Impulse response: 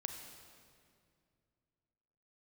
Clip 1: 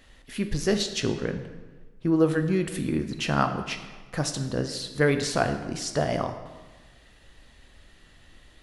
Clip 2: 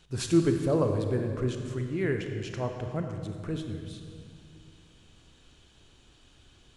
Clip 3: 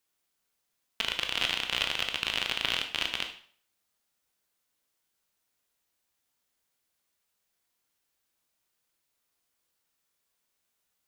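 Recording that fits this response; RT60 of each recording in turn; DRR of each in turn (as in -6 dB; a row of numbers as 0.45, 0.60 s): 2; 1.3, 2.3, 0.50 s; 7.0, 4.5, 4.0 dB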